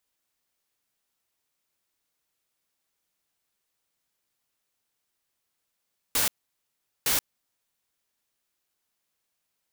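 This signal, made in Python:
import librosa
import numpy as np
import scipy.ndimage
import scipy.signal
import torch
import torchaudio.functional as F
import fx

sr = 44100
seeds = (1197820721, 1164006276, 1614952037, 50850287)

y = fx.noise_burst(sr, seeds[0], colour='white', on_s=0.13, off_s=0.78, bursts=2, level_db=-24.0)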